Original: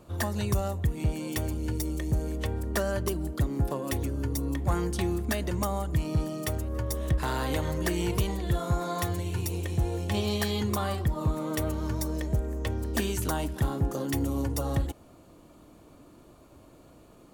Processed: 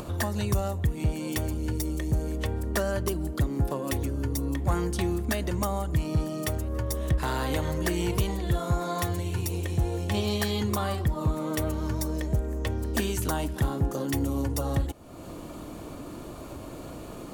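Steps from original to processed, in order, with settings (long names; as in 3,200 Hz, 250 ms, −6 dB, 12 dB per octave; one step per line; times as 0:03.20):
upward compression, threshold −28 dBFS
level +1 dB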